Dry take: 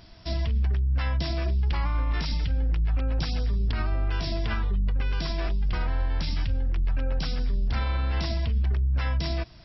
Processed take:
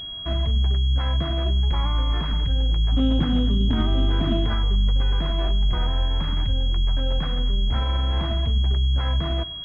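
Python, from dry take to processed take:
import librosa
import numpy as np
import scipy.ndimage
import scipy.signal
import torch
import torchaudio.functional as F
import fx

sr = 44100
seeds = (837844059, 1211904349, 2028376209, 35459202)

y = fx.peak_eq(x, sr, hz=250.0, db=14.5, octaves=0.82, at=(2.92, 4.46))
y = fx.echo_feedback(y, sr, ms=101, feedback_pct=52, wet_db=-20.0)
y = fx.pwm(y, sr, carrier_hz=3300.0)
y = y * 10.0 ** (4.0 / 20.0)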